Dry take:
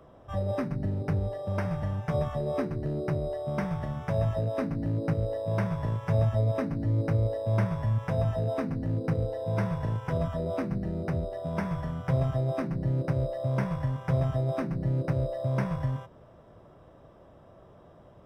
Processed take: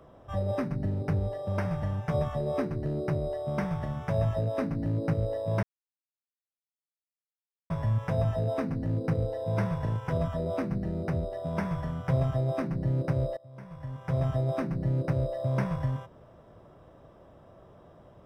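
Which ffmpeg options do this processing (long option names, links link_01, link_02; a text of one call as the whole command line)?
ffmpeg -i in.wav -filter_complex "[0:a]asplit=4[link_01][link_02][link_03][link_04];[link_01]atrim=end=5.63,asetpts=PTS-STARTPTS,afade=type=out:start_time=5.626:duration=0.004:curve=hsin[link_05];[link_02]atrim=start=5.63:end=7.7,asetpts=PTS-STARTPTS,volume=0[link_06];[link_03]atrim=start=7.7:end=13.37,asetpts=PTS-STARTPTS,afade=type=in:duration=0.004:curve=hsin,afade=type=out:start_time=5.666:duration=0.004:curve=hsin:silence=0.0749894[link_07];[link_04]atrim=start=13.37,asetpts=PTS-STARTPTS,afade=type=in:duration=0.9:curve=qua:silence=0.0749894[link_08];[link_05][link_06][link_07][link_08]concat=n=4:v=0:a=1" out.wav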